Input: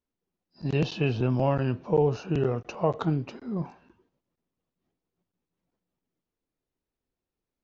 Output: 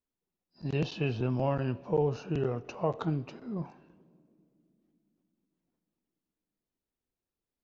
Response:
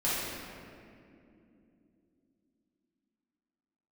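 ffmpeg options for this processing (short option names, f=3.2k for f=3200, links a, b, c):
-filter_complex "[0:a]asplit=2[a][b];[1:a]atrim=start_sample=2205,lowshelf=f=220:g=-9[c];[b][c]afir=irnorm=-1:irlink=0,volume=-29dB[d];[a][d]amix=inputs=2:normalize=0,volume=-5dB"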